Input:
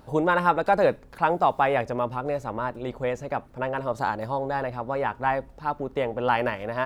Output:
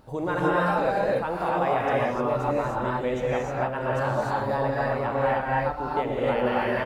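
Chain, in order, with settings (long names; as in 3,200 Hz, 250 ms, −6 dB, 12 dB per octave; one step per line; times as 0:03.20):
brickwall limiter −17 dBFS, peak gain reduction 9 dB
on a send: single-tap delay 119 ms −16.5 dB
on the sum: reverb whose tail is shaped and stops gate 330 ms rising, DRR −5.5 dB
level −3.5 dB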